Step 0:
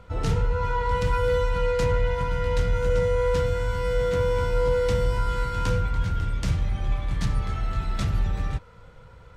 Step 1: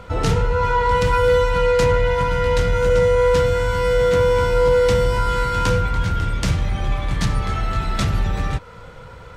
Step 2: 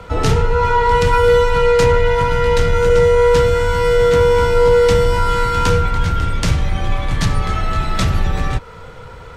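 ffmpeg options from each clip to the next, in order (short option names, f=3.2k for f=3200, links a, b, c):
-filter_complex "[0:a]lowshelf=f=140:g=-6.5,asplit=2[a][b];[b]acompressor=threshold=-34dB:ratio=6,volume=-2dB[c];[a][c]amix=inputs=2:normalize=0,volume=7dB"
-af "afreqshift=-14,volume=4dB"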